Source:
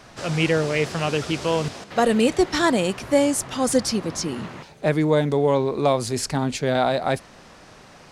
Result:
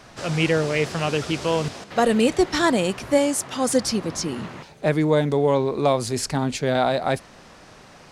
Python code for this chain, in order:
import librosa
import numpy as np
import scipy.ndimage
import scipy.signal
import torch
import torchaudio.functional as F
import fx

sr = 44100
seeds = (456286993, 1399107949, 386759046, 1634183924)

y = fx.highpass(x, sr, hz=fx.line((3.17, 260.0), (3.82, 110.0)), slope=6, at=(3.17, 3.82), fade=0.02)